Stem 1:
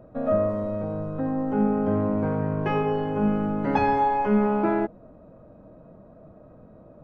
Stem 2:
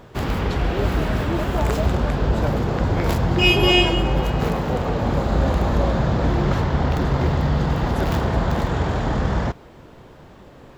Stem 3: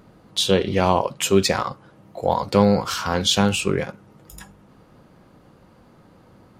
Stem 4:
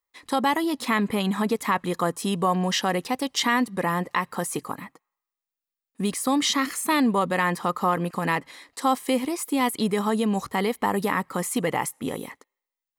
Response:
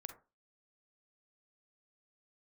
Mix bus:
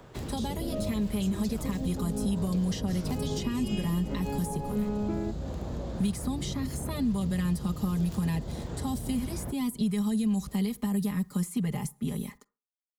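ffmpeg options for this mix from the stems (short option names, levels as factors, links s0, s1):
-filter_complex "[0:a]adelay=450,volume=0.841[s0];[1:a]equalizer=f=8200:t=o:w=0.77:g=5,acompressor=threshold=0.0355:ratio=2,volume=0.473[s1];[2:a]acompressor=threshold=0.1:ratio=6,volume=0.224[s2];[3:a]asubboost=boost=6.5:cutoff=150,aecho=1:1:4.9:1,acrusher=bits=10:mix=0:aa=0.000001,volume=0.531,asplit=3[s3][s4][s5];[s4]volume=0.266[s6];[s5]apad=whole_len=330152[s7];[s0][s7]sidechaincompress=threshold=0.0282:ratio=8:attack=16:release=134[s8];[4:a]atrim=start_sample=2205[s9];[s6][s9]afir=irnorm=-1:irlink=0[s10];[s8][s1][s2][s3][s10]amix=inputs=5:normalize=0,acrossover=split=90|210|590|3500[s11][s12][s13][s14][s15];[s11]acompressor=threshold=0.0141:ratio=4[s16];[s12]acompressor=threshold=0.0282:ratio=4[s17];[s13]acompressor=threshold=0.0158:ratio=4[s18];[s14]acompressor=threshold=0.00251:ratio=4[s19];[s15]acompressor=threshold=0.00794:ratio=4[s20];[s16][s17][s18][s19][s20]amix=inputs=5:normalize=0"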